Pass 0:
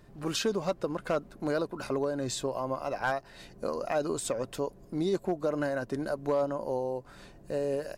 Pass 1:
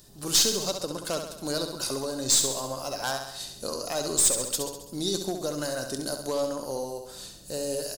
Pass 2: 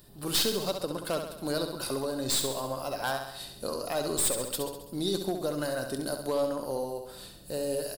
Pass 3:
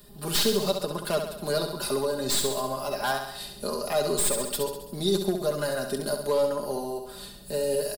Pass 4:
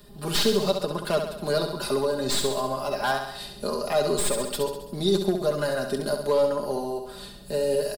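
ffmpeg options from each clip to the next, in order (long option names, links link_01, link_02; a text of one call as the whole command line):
ffmpeg -i in.wav -af "aexciter=amount=7.9:drive=5.8:freq=3300,aeval=exprs='(tanh(4.47*val(0)+0.25)-tanh(0.25))/4.47':channel_layout=same,aecho=1:1:67|134|201|268|335|402|469:0.447|0.255|0.145|0.0827|0.0472|0.0269|0.0153,volume=-1.5dB" out.wav
ffmpeg -i in.wav -af "equalizer=frequency=6400:width_type=o:width=0.64:gain=-15" out.wav
ffmpeg -i in.wav -filter_complex "[0:a]aecho=1:1:4.9:0.77,acrossover=split=250|930|2800[link_01][link_02][link_03][link_04];[link_04]asoftclip=type=tanh:threshold=-23dB[link_05];[link_01][link_02][link_03][link_05]amix=inputs=4:normalize=0,volume=2dB" out.wav
ffmpeg -i in.wav -af "highshelf=frequency=7900:gain=-10,volume=2.5dB" out.wav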